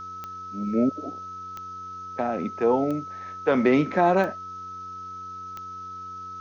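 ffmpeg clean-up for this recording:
-af "adeclick=t=4,bandreject=f=92.5:t=h:w=4,bandreject=f=185:t=h:w=4,bandreject=f=277.5:t=h:w=4,bandreject=f=370:t=h:w=4,bandreject=f=462.5:t=h:w=4,bandreject=f=1.3k:w=30,afftdn=nr=30:nf=-38"

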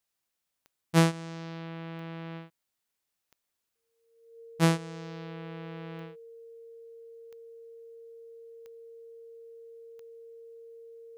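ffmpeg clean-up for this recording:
-af "adeclick=t=4,bandreject=f=460:w=30"

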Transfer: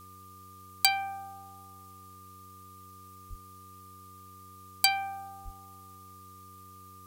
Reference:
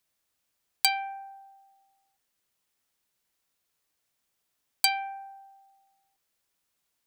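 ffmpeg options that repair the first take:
-filter_complex "[0:a]bandreject=f=94.5:t=h:w=4,bandreject=f=189:t=h:w=4,bandreject=f=283.5:t=h:w=4,bandreject=f=378:t=h:w=4,bandreject=f=472.5:t=h:w=4,bandreject=f=1.2k:w=30,asplit=3[a][b][c];[a]afade=t=out:st=3.29:d=0.02[d];[b]highpass=f=140:w=0.5412,highpass=f=140:w=1.3066,afade=t=in:st=3.29:d=0.02,afade=t=out:st=3.41:d=0.02[e];[c]afade=t=in:st=3.41:d=0.02[f];[d][e][f]amix=inputs=3:normalize=0,asplit=3[g][h][i];[g]afade=t=out:st=5.44:d=0.02[j];[h]highpass=f=140:w=0.5412,highpass=f=140:w=1.3066,afade=t=in:st=5.44:d=0.02,afade=t=out:st=5.56:d=0.02[k];[i]afade=t=in:st=5.56:d=0.02[l];[j][k][l]amix=inputs=3:normalize=0,afftdn=nr=28:nf=-51"

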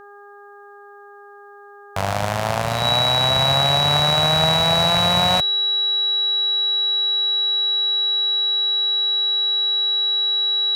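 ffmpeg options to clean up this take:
-af "bandreject=f=406.7:t=h:w=4,bandreject=f=813.4:t=h:w=4,bandreject=f=1.2201k:t=h:w=4,bandreject=f=1.6268k:t=h:w=4,bandreject=f=3.9k:w=30"

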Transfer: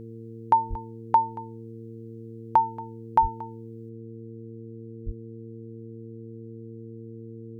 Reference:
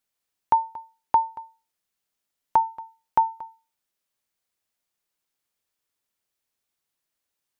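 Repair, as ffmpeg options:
-filter_complex "[0:a]bandreject=f=113.7:t=h:w=4,bandreject=f=227.4:t=h:w=4,bandreject=f=341.1:t=h:w=4,bandreject=f=454.8:t=h:w=4,asplit=3[a][b][c];[a]afade=t=out:st=0.69:d=0.02[d];[b]highpass=f=140:w=0.5412,highpass=f=140:w=1.3066,afade=t=in:st=0.69:d=0.02,afade=t=out:st=0.81:d=0.02[e];[c]afade=t=in:st=0.81:d=0.02[f];[d][e][f]amix=inputs=3:normalize=0,asplit=3[g][h][i];[g]afade=t=out:st=3.21:d=0.02[j];[h]highpass=f=140:w=0.5412,highpass=f=140:w=1.3066,afade=t=in:st=3.21:d=0.02,afade=t=out:st=3.33:d=0.02[k];[i]afade=t=in:st=3.33:d=0.02[l];[j][k][l]amix=inputs=3:normalize=0,asplit=3[m][n][o];[m]afade=t=out:st=5.05:d=0.02[p];[n]highpass=f=140:w=0.5412,highpass=f=140:w=1.3066,afade=t=in:st=5.05:d=0.02,afade=t=out:st=5.17:d=0.02[q];[o]afade=t=in:st=5.17:d=0.02[r];[p][q][r]amix=inputs=3:normalize=0,asetnsamples=n=441:p=0,asendcmd='3.89 volume volume 11dB',volume=0dB"

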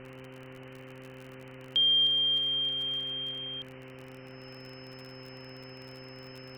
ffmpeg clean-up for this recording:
-af "adeclick=t=4,bandreject=f=130.1:t=h:w=4,bandreject=f=260.2:t=h:w=4,bandreject=f=390.3:t=h:w=4,bandreject=f=520.4:t=h:w=4,bandreject=f=5.2k:w=30,afwtdn=0.0056"

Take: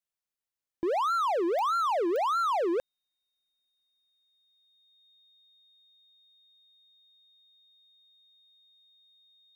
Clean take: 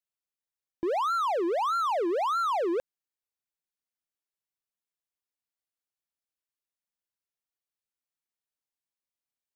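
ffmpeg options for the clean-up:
-af "adeclick=t=4,bandreject=f=3.7k:w=30"

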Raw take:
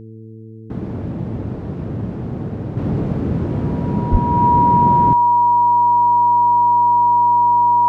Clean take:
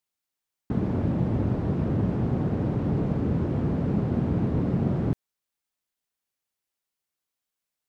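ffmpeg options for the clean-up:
-filter_complex "[0:a]bandreject=f=111:t=h:w=4,bandreject=f=222:t=h:w=4,bandreject=f=333:t=h:w=4,bandreject=f=444:t=h:w=4,bandreject=f=960:w=30,asplit=3[a][b][c];[a]afade=t=out:st=4.11:d=0.02[d];[b]highpass=f=140:w=0.5412,highpass=f=140:w=1.3066,afade=t=in:st=4.11:d=0.02,afade=t=out:st=4.23:d=0.02[e];[c]afade=t=in:st=4.23:d=0.02[f];[d][e][f]amix=inputs=3:normalize=0,asetnsamples=n=441:p=0,asendcmd='2.77 volume volume -5.5dB',volume=0dB"

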